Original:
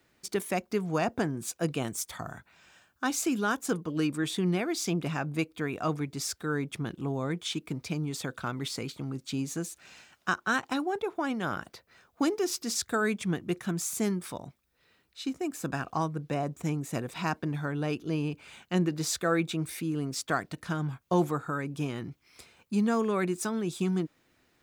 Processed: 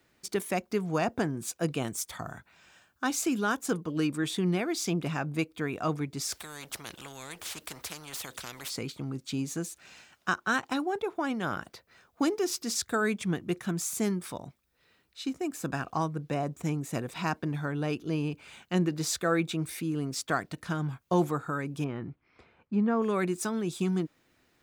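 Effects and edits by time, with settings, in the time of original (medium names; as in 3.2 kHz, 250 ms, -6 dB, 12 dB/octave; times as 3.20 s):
6.32–8.70 s: spectrum-flattening compressor 4:1
21.84–23.02 s: low-pass 1.8 kHz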